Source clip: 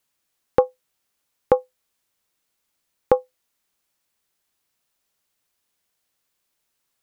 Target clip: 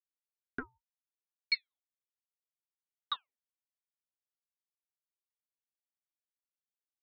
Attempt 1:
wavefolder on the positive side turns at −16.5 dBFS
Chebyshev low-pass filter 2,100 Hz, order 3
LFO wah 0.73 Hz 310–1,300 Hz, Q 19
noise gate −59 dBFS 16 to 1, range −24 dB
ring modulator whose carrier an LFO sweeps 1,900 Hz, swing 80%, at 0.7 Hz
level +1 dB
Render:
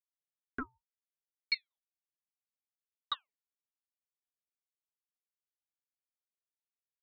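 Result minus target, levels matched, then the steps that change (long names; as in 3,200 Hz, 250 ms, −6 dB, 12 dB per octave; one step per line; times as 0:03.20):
wavefolder on the positive side: distortion −9 dB
change: wavefolder on the positive side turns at −23 dBFS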